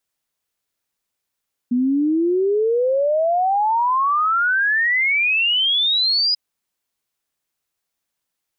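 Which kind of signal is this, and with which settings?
log sweep 240 Hz -> 5 kHz 4.64 s -15 dBFS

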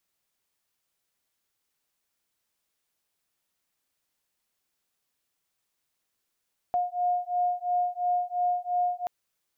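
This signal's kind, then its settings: beating tones 713 Hz, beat 2.9 Hz, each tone -27.5 dBFS 2.33 s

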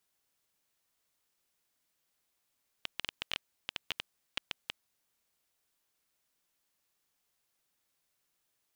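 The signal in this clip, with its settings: random clicks 9.3 per s -16 dBFS 1.93 s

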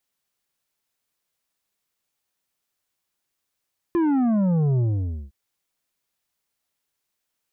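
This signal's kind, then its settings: sub drop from 350 Hz, over 1.36 s, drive 8 dB, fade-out 0.52 s, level -18.5 dB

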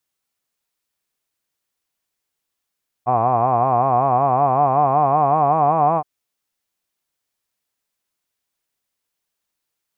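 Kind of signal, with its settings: formant-synthesis vowel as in hod, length 2.97 s, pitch 118 Hz, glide +5 st, vibrato depth 1.25 st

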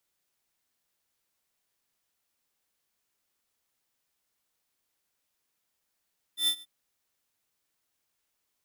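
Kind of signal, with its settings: ADSR square 3.54 kHz, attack 105 ms, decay 77 ms, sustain -23 dB, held 0.25 s, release 36 ms -24 dBFS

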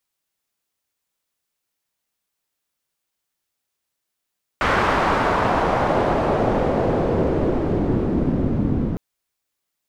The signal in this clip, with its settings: swept filtered noise white, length 4.36 s lowpass, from 1.4 kHz, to 200 Hz, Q 1.3, exponential, gain ramp +6.5 dB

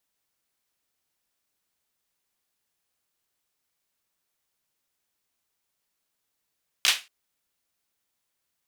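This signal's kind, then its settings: hand clap length 0.23 s, bursts 3, apart 15 ms, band 2.9 kHz, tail 0.26 s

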